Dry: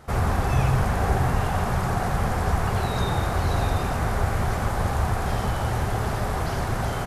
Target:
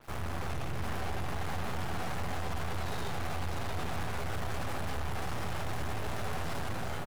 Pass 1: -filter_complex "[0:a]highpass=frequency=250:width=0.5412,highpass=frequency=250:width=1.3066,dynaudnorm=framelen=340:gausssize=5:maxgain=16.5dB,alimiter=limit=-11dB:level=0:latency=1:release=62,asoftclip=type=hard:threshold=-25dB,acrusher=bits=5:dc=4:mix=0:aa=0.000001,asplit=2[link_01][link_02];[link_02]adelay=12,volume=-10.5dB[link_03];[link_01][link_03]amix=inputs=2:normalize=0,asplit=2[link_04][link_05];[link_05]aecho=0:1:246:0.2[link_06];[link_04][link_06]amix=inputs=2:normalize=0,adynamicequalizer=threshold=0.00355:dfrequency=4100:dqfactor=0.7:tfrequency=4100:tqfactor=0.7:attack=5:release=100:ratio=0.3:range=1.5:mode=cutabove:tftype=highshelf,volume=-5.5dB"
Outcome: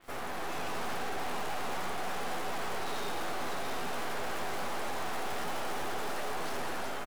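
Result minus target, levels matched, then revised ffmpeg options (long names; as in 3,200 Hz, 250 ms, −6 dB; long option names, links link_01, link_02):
125 Hz band −14.0 dB
-filter_complex "[0:a]highpass=frequency=64:width=0.5412,highpass=frequency=64:width=1.3066,dynaudnorm=framelen=340:gausssize=5:maxgain=16.5dB,alimiter=limit=-11dB:level=0:latency=1:release=62,asoftclip=type=hard:threshold=-25dB,acrusher=bits=5:dc=4:mix=0:aa=0.000001,asplit=2[link_01][link_02];[link_02]adelay=12,volume=-10.5dB[link_03];[link_01][link_03]amix=inputs=2:normalize=0,asplit=2[link_04][link_05];[link_05]aecho=0:1:246:0.2[link_06];[link_04][link_06]amix=inputs=2:normalize=0,adynamicequalizer=threshold=0.00355:dfrequency=4100:dqfactor=0.7:tfrequency=4100:tqfactor=0.7:attack=5:release=100:ratio=0.3:range=1.5:mode=cutabove:tftype=highshelf,volume=-5.5dB"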